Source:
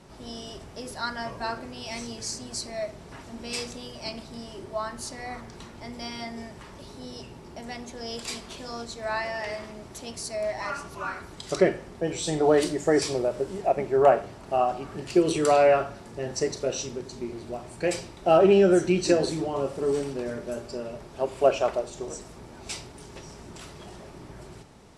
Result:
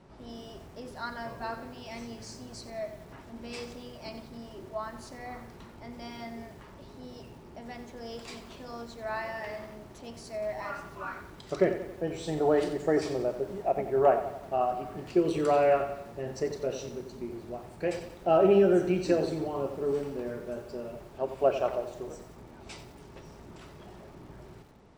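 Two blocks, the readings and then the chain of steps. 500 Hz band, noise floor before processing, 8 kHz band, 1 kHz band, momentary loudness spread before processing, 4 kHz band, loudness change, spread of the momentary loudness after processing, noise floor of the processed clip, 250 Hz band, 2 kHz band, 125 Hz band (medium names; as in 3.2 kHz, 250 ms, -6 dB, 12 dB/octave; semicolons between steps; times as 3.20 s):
-4.0 dB, -46 dBFS, -14.0 dB, -4.0 dB, 21 LU, -10.5 dB, -3.5 dB, 22 LU, -50 dBFS, -3.5 dB, -6.0 dB, -3.5 dB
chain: low-pass 2 kHz 6 dB/octave; bit-crushed delay 90 ms, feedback 55%, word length 8-bit, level -10.5 dB; trim -4 dB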